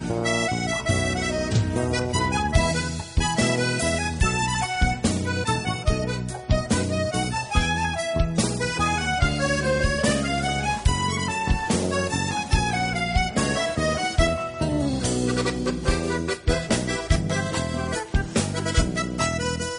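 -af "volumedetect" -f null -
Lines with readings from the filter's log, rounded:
mean_volume: -23.5 dB
max_volume: -6.2 dB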